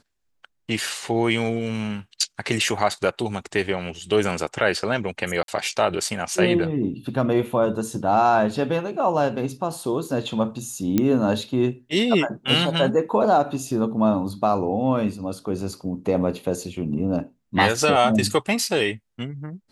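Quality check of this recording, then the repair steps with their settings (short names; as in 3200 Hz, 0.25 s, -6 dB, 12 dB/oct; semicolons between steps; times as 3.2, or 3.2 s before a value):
5.43–5.48 gap 52 ms
10.98 pop -7 dBFS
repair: de-click; interpolate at 5.43, 52 ms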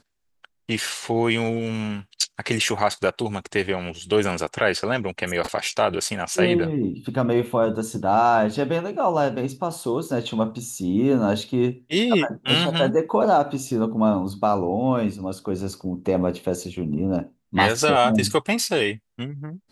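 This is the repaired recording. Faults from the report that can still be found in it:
none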